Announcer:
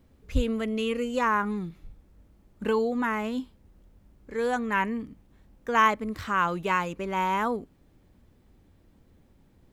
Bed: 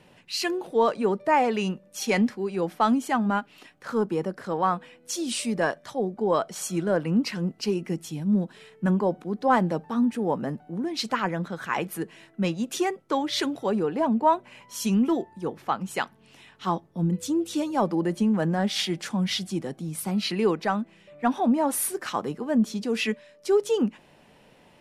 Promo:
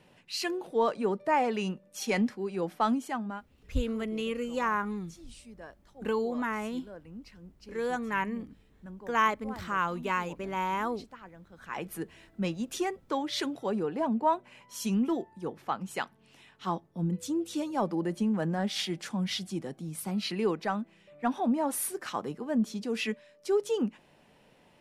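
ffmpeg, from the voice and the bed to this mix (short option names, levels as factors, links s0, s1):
-filter_complex "[0:a]adelay=3400,volume=0.596[s0];[1:a]volume=3.98,afade=t=out:st=2.86:d=0.65:silence=0.133352,afade=t=in:st=11.51:d=0.44:silence=0.141254[s1];[s0][s1]amix=inputs=2:normalize=0"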